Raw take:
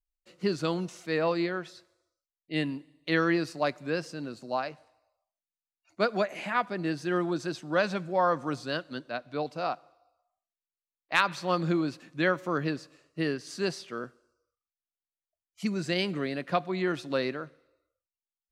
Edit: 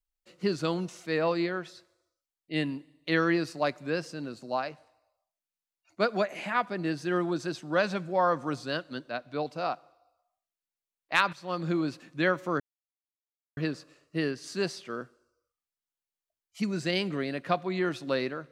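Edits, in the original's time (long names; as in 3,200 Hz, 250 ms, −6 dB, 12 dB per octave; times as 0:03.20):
0:11.33–0:11.85: fade in, from −12.5 dB
0:12.60: splice in silence 0.97 s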